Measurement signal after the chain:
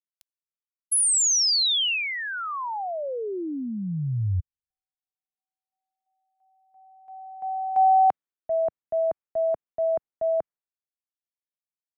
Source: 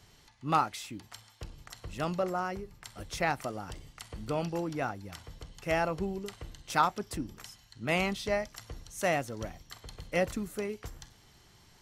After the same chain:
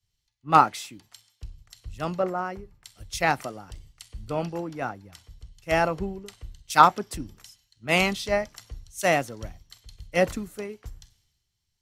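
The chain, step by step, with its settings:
multiband upward and downward expander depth 100%
level +3 dB

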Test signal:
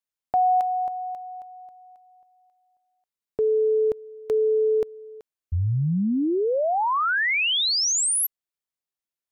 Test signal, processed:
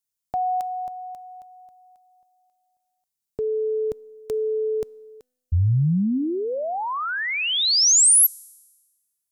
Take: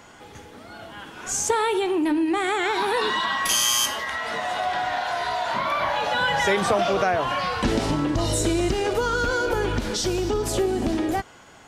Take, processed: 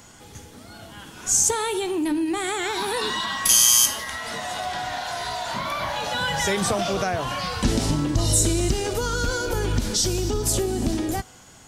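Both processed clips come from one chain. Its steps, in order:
bass and treble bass +9 dB, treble +13 dB
tuned comb filter 250 Hz, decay 1.3 s, mix 40%

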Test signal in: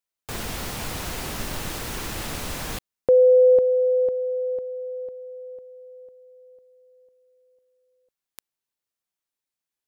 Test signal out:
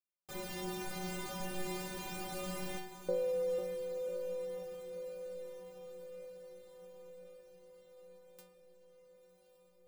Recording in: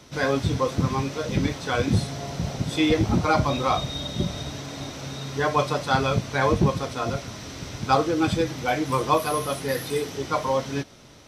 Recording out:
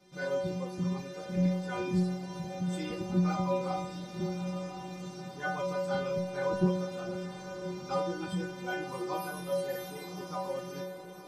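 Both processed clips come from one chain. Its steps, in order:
parametric band 300 Hz +7.5 dB 2.9 octaves
stiff-string resonator 180 Hz, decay 0.74 s, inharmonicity 0.008
feedback delay with all-pass diffusion 1,078 ms, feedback 61%, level −11.5 dB
level +3 dB

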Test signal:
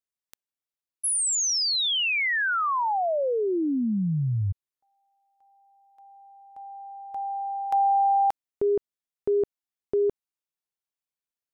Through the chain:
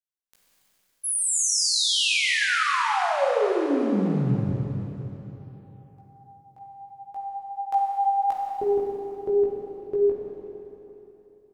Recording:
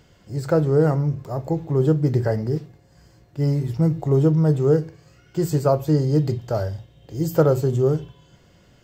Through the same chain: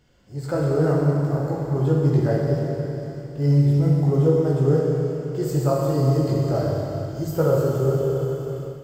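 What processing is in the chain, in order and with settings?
multi-voice chorus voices 6, 0.66 Hz, delay 18 ms, depth 4 ms
four-comb reverb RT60 3.5 s, combs from 31 ms, DRR −2 dB
automatic gain control gain up to 6 dB
level −5 dB

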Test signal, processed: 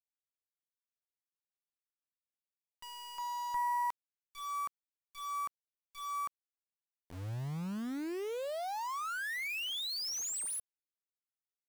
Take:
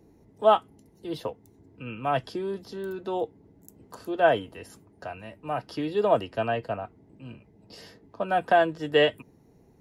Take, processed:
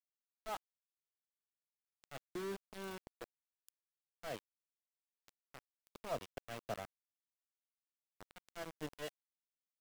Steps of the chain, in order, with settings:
tube saturation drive 17 dB, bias 0.55
volume swells 347 ms
centre clipping without the shift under −34 dBFS
level −8 dB

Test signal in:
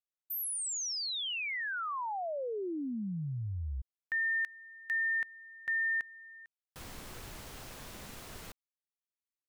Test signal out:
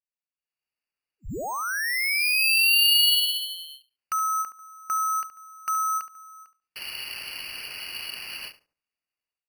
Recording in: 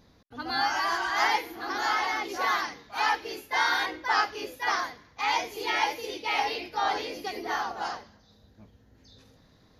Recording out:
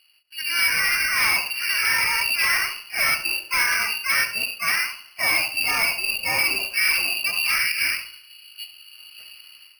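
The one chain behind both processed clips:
high-pass filter 200 Hz 24 dB per octave
spectral tilt −4.5 dB per octave
voice inversion scrambler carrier 3,100 Hz
automatic gain control gain up to 15 dB
gain into a clipping stage and back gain 12 dB
feedback echo with a low-pass in the loop 71 ms, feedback 25%, low-pass 1,400 Hz, level −8.5 dB
bad sample-rate conversion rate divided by 6×, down filtered, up hold
every ending faded ahead of time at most 230 dB per second
level −4.5 dB

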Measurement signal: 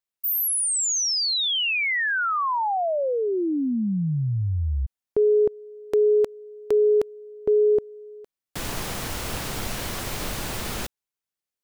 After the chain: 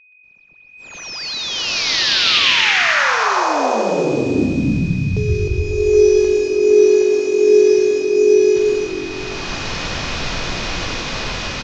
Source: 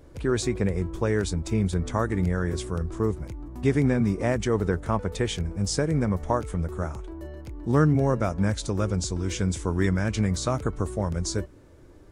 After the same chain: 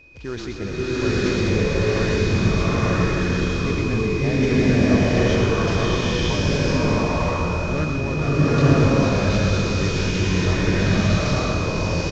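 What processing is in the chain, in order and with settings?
variable-slope delta modulation 32 kbit/s
high-shelf EQ 2,900 Hz +7.5 dB
steady tone 2,500 Hz −42 dBFS
echo with shifted repeats 124 ms, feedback 38%, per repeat −46 Hz, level −5.5 dB
slow-attack reverb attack 950 ms, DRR −11 dB
level −6 dB

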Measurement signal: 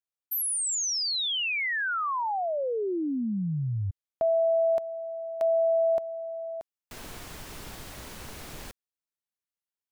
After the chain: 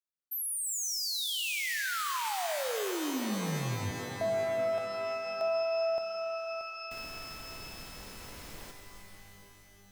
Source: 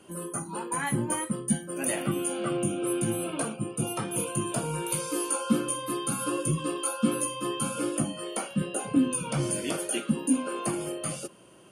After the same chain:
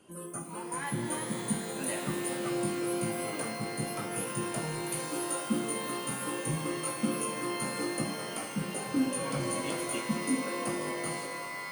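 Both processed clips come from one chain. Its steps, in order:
reverb with rising layers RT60 3.1 s, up +12 semitones, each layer −2 dB, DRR 5.5 dB
level −6.5 dB

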